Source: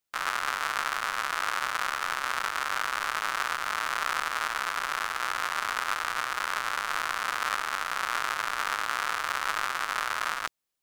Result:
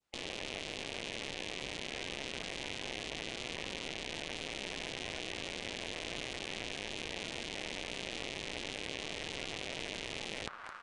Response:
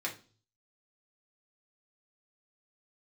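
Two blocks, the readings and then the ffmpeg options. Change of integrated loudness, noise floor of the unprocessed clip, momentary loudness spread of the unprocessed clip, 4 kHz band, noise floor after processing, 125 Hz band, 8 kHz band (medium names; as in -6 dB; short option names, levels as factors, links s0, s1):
-10.5 dB, -37 dBFS, 1 LU, -4.0 dB, -46 dBFS, no reading, -8.5 dB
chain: -filter_complex "[0:a]asplit=2[s0][s1];[s1]aecho=0:1:215|430|645|860|1075:0.0944|0.0557|0.0329|0.0194|0.0114[s2];[s0][s2]amix=inputs=2:normalize=0,adynamicequalizer=threshold=0.00891:dfrequency=1700:dqfactor=0.73:tfrequency=1700:tqfactor=0.73:attack=5:release=100:ratio=0.375:range=2.5:mode=cutabove:tftype=bell,acrossover=split=1600|4000[s3][s4][s5];[s3]acompressor=threshold=0.02:ratio=4[s6];[s4]acompressor=threshold=0.01:ratio=4[s7];[s5]acompressor=threshold=0.00178:ratio=4[s8];[s6][s7][s8]amix=inputs=3:normalize=0,afftfilt=real='re*lt(hypot(re,im),0.0158)':imag='im*lt(hypot(re,im),0.0158)':win_size=1024:overlap=0.75,aemphasis=mode=reproduction:type=75kf,asplit=2[s9][s10];[s10]acrusher=bits=4:dc=4:mix=0:aa=0.000001,volume=0.562[s11];[s9][s11]amix=inputs=2:normalize=0,aresample=22050,aresample=44100,volume=2.37"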